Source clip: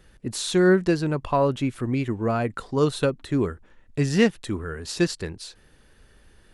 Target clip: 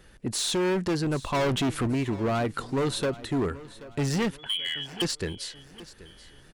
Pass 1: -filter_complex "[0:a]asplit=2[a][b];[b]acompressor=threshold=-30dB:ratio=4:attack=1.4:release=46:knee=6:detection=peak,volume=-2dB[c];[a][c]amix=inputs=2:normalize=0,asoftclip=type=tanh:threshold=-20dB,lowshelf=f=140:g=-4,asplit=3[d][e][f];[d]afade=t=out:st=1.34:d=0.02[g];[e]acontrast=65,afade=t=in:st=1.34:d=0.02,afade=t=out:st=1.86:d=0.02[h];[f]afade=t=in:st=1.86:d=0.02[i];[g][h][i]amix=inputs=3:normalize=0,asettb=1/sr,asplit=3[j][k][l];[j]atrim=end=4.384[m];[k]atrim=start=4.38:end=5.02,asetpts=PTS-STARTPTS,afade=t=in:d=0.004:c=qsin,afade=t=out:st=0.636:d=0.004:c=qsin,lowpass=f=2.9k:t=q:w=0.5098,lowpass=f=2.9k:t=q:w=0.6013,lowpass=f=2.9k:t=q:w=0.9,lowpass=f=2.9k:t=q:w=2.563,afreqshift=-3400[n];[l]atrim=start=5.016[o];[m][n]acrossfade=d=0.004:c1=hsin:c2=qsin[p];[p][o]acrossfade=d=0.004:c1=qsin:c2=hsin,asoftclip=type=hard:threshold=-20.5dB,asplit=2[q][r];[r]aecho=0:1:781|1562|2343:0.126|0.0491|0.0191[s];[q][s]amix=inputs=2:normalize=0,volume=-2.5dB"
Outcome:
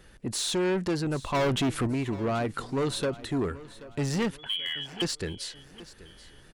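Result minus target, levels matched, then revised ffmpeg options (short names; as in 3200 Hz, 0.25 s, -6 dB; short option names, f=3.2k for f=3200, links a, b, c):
compressor: peak gain reduction +5 dB; soft clip: distortion +7 dB
-filter_complex "[0:a]asplit=2[a][b];[b]acompressor=threshold=-23.5dB:ratio=4:attack=1.4:release=46:knee=6:detection=peak,volume=-2dB[c];[a][c]amix=inputs=2:normalize=0,asoftclip=type=tanh:threshold=-12.5dB,lowshelf=f=140:g=-4,asplit=3[d][e][f];[d]afade=t=out:st=1.34:d=0.02[g];[e]acontrast=65,afade=t=in:st=1.34:d=0.02,afade=t=out:st=1.86:d=0.02[h];[f]afade=t=in:st=1.86:d=0.02[i];[g][h][i]amix=inputs=3:normalize=0,asettb=1/sr,asplit=3[j][k][l];[j]atrim=end=4.384[m];[k]atrim=start=4.38:end=5.02,asetpts=PTS-STARTPTS,afade=t=in:d=0.004:c=qsin,afade=t=out:st=0.636:d=0.004:c=qsin,lowpass=f=2.9k:t=q:w=0.5098,lowpass=f=2.9k:t=q:w=0.6013,lowpass=f=2.9k:t=q:w=0.9,lowpass=f=2.9k:t=q:w=2.563,afreqshift=-3400[n];[l]atrim=start=5.016[o];[m][n]acrossfade=d=0.004:c1=hsin:c2=qsin[p];[p][o]acrossfade=d=0.004:c1=qsin:c2=hsin,asoftclip=type=hard:threshold=-20.5dB,asplit=2[q][r];[r]aecho=0:1:781|1562|2343:0.126|0.0491|0.0191[s];[q][s]amix=inputs=2:normalize=0,volume=-2.5dB"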